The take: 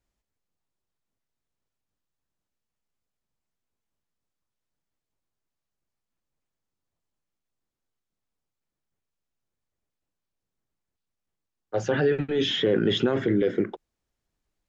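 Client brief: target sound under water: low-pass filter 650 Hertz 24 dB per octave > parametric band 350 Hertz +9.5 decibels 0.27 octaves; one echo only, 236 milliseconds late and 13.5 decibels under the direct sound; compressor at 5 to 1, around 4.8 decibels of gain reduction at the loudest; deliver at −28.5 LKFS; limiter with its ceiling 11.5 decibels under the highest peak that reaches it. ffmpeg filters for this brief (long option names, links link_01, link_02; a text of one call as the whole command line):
ffmpeg -i in.wav -af "acompressor=threshold=-23dB:ratio=5,alimiter=level_in=1.5dB:limit=-24dB:level=0:latency=1,volume=-1.5dB,lowpass=frequency=650:width=0.5412,lowpass=frequency=650:width=1.3066,equalizer=frequency=350:width_type=o:width=0.27:gain=9.5,aecho=1:1:236:0.211,volume=4.5dB" out.wav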